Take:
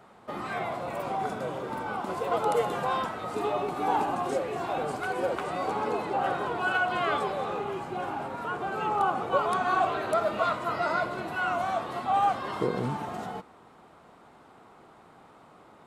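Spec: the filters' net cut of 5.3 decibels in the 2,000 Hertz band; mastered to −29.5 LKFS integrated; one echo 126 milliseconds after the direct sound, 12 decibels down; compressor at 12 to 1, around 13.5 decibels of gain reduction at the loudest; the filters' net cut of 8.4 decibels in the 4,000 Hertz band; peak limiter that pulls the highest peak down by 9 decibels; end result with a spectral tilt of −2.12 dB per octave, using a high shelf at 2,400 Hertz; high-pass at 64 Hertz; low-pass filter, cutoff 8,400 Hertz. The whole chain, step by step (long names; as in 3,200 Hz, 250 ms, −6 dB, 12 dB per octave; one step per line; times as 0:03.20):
high-pass filter 64 Hz
low-pass filter 8,400 Hz
parametric band 2,000 Hz −6 dB
high-shelf EQ 2,400 Hz −3.5 dB
parametric band 4,000 Hz −5.5 dB
downward compressor 12 to 1, threshold −36 dBFS
brickwall limiter −35 dBFS
single-tap delay 126 ms −12 dB
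level +13.5 dB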